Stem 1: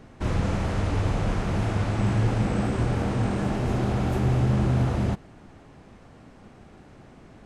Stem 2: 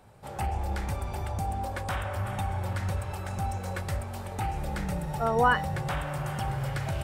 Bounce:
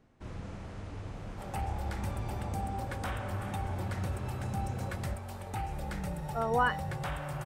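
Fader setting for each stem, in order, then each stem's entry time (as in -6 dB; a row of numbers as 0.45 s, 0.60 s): -17.0 dB, -5.0 dB; 0.00 s, 1.15 s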